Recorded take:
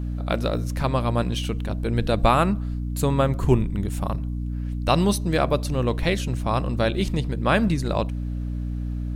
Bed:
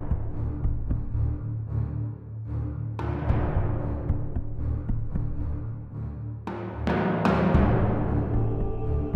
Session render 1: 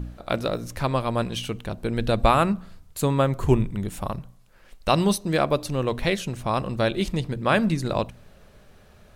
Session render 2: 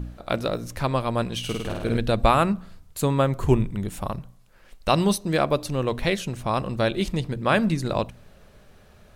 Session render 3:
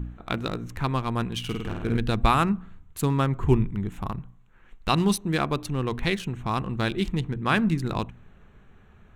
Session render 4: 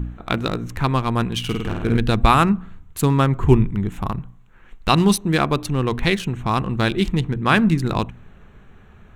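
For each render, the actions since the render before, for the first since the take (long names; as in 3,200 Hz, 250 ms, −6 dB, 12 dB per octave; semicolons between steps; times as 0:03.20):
hum removal 60 Hz, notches 5
0:01.39–0:01.97: flutter between parallel walls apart 8.9 metres, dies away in 1.1 s
adaptive Wiener filter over 9 samples; parametric band 580 Hz −13 dB 0.49 octaves
level +6.5 dB; brickwall limiter −1 dBFS, peak gain reduction 2 dB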